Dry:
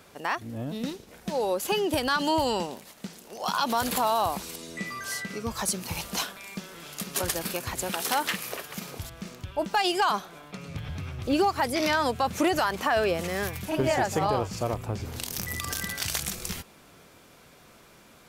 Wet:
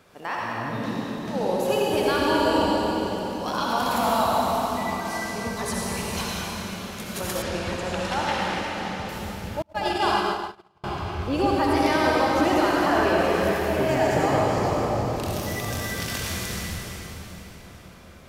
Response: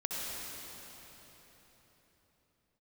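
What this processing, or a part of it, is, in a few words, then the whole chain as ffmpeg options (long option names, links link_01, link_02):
swimming-pool hall: -filter_complex "[1:a]atrim=start_sample=2205[link_01];[0:a][link_01]afir=irnorm=-1:irlink=0,highshelf=frequency=4900:gain=-7,asettb=1/sr,asplit=3[link_02][link_03][link_04];[link_02]atrim=end=7.424[link_05];[link_03]atrim=start=7.42:end=9.09,asetpts=PTS-STARTPTS,afade=type=in:duration=0.004:curve=qsin,afade=type=out:start_time=1.666:duration=0.004:curve=qsin,lowpass=5500[link_06];[link_04]atrim=start=9.086[link_07];[link_05][link_06]acrossfade=duration=0.004:curve1=hsin:curve2=qsin[link_08];[link_08][link_07]acrossfade=duration=0.004:curve1=qsin:curve2=hsin,asettb=1/sr,asplit=3[link_09][link_10][link_11];[link_09]atrim=end=9.624[link_12];[link_10]atrim=start=9.62:end=10.84,asetpts=PTS-STARTPTS,afade=type=in:duration=0.004:curve=qsin,afade=type=out:start_time=1.216:duration=0.004:curve=qsin,agate=range=-36dB:threshold=-22dB:ratio=16:detection=peak[link_13];[link_11]atrim=start=10.836[link_14];[link_12][link_13]acrossfade=duration=0.004:curve1=hsin:curve2=qsin[link_15];[link_15][link_14]acrossfade=duration=0.004:curve1=qsin:curve2=hsin"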